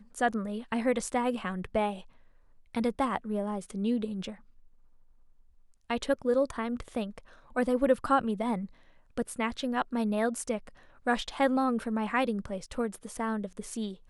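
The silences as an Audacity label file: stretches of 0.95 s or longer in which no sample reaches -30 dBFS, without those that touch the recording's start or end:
4.300000	5.900000	silence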